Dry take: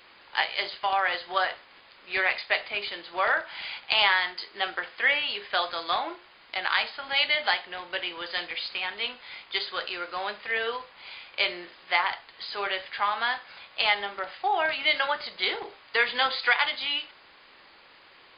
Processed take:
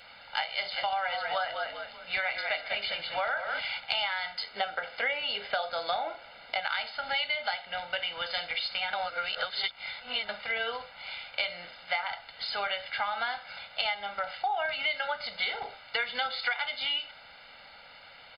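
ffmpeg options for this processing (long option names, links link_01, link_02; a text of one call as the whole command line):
ffmpeg -i in.wav -filter_complex "[0:a]asplit=3[link_01][link_02][link_03];[link_01]afade=type=out:start_time=0.7:duration=0.02[link_04];[link_02]asplit=5[link_05][link_06][link_07][link_08][link_09];[link_06]adelay=194,afreqshift=-48,volume=-8.5dB[link_10];[link_07]adelay=388,afreqshift=-96,volume=-17.9dB[link_11];[link_08]adelay=582,afreqshift=-144,volume=-27.2dB[link_12];[link_09]adelay=776,afreqshift=-192,volume=-36.6dB[link_13];[link_05][link_10][link_11][link_12][link_13]amix=inputs=5:normalize=0,afade=type=in:start_time=0.7:duration=0.02,afade=type=out:start_time=3.59:duration=0.02[link_14];[link_03]afade=type=in:start_time=3.59:duration=0.02[link_15];[link_04][link_14][link_15]amix=inputs=3:normalize=0,asettb=1/sr,asplit=3[link_16][link_17][link_18];[link_16]atrim=end=4.564[link_19];[link_17]atrim=start=4.56:end=6.6,asetpts=PTS-STARTPTS,afade=type=in:duration=0.004:curve=qsin,afade=type=out:start_time=2.036:duration=0.004:curve=qsin,equalizer=frequency=410:width=0.82:gain=8[link_20];[link_18]atrim=start=6.596[link_21];[link_19][link_20]acrossfade=duration=0.004:curve1=hsin:curve2=qsin[link_22];[link_22][link_21]acrossfade=duration=0.004:curve1=qsin:curve2=hsin,asplit=3[link_23][link_24][link_25];[link_23]atrim=end=8.932[link_26];[link_24]atrim=start=8.928:end=10.292,asetpts=PTS-STARTPTS,areverse[link_27];[link_25]atrim=start=10.288[link_28];[link_26][link_27]acrossfade=duration=0.004:curve1=hsin:curve2=hsin[link_29];[link_29][link_28]acrossfade=duration=0.004:curve1=hsin:curve2=hsin,aecho=1:1:1.4:0.96,acompressor=threshold=-28dB:ratio=6" out.wav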